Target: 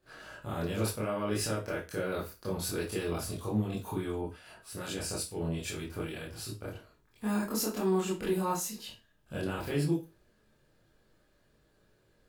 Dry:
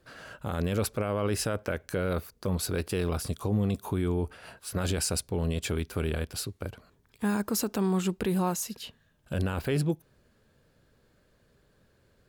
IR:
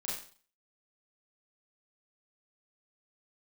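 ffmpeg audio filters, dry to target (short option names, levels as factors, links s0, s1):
-filter_complex "[1:a]atrim=start_sample=2205,asetrate=70560,aresample=44100[s0];[0:a][s0]afir=irnorm=-1:irlink=0,asettb=1/sr,asplit=3[s1][s2][s3];[s1]atrim=end=4.214[s4];[s2]atrim=start=4.21:end=6.49,asetpts=PTS-STARTPTS,afade=t=in:d=0.004:c=qsin,afade=t=out:st=2.276:d=0.004:c=qsin,acrossover=split=1800[s5][s6];[s5]aeval=exprs='val(0)*(1-0.5/2+0.5/2*cos(2*PI*2.3*n/s))':c=same[s7];[s6]aeval=exprs='val(0)*(1-0.5/2-0.5/2*cos(2*PI*2.3*n/s))':c=same[s8];[s7][s8]amix=inputs=2:normalize=0[s9];[s3]atrim=start=6.486[s10];[s4][s9]acrossfade=d=0.004:c1=hsin:c2=qsin[s11];[s11][s10]acrossfade=d=0.004:c1=qsin:c2=hsin"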